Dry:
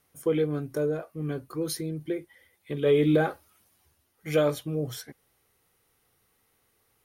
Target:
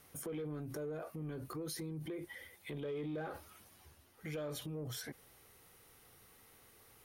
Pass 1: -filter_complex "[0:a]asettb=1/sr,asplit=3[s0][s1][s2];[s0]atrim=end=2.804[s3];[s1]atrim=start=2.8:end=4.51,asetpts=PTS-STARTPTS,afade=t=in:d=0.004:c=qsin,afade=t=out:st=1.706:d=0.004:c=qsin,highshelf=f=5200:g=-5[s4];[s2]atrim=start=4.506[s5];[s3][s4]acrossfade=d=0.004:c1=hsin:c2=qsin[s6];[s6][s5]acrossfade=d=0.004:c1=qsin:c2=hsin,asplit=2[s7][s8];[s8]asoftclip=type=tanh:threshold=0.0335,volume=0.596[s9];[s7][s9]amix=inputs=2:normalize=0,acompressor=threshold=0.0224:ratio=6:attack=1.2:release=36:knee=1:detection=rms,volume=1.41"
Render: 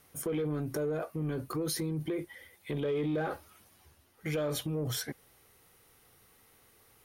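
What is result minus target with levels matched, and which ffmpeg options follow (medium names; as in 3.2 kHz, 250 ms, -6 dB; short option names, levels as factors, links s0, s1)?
compression: peak gain reduction -9 dB
-filter_complex "[0:a]asettb=1/sr,asplit=3[s0][s1][s2];[s0]atrim=end=2.804[s3];[s1]atrim=start=2.8:end=4.51,asetpts=PTS-STARTPTS,afade=t=in:d=0.004:c=qsin,afade=t=out:st=1.706:d=0.004:c=qsin,highshelf=f=5200:g=-5[s4];[s2]atrim=start=4.506[s5];[s3][s4]acrossfade=d=0.004:c1=hsin:c2=qsin[s6];[s6][s5]acrossfade=d=0.004:c1=qsin:c2=hsin,asplit=2[s7][s8];[s8]asoftclip=type=tanh:threshold=0.0335,volume=0.596[s9];[s7][s9]amix=inputs=2:normalize=0,acompressor=threshold=0.00631:ratio=6:attack=1.2:release=36:knee=1:detection=rms,volume=1.41"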